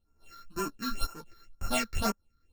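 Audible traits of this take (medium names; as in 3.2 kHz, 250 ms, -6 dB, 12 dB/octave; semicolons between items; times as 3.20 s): a buzz of ramps at a fixed pitch in blocks of 32 samples; phasing stages 6, 2 Hz, lowest notch 710–3700 Hz; tremolo saw up 0.95 Hz, depth 85%; a shimmering, thickened sound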